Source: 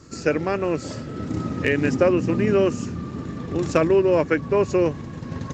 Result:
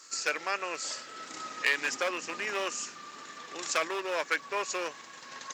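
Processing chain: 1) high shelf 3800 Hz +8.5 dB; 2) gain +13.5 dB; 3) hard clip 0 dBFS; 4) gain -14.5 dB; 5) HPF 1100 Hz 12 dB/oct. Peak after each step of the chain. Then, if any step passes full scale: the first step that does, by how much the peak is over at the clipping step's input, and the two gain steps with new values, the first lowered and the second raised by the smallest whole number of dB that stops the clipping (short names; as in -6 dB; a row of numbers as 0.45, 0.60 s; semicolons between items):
-5.0, +8.5, 0.0, -14.5, -12.0 dBFS; step 2, 8.5 dB; step 2 +4.5 dB, step 4 -5.5 dB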